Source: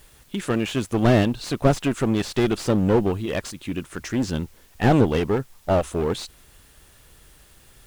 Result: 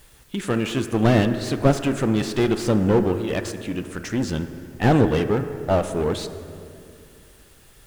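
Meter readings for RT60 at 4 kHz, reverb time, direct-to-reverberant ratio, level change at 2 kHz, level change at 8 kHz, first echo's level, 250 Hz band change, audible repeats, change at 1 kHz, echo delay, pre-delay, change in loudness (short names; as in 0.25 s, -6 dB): 1.6 s, 2.4 s, 8.0 dB, +1.0 dB, 0.0 dB, none, +1.0 dB, none, +0.5 dB, none, 3 ms, +1.0 dB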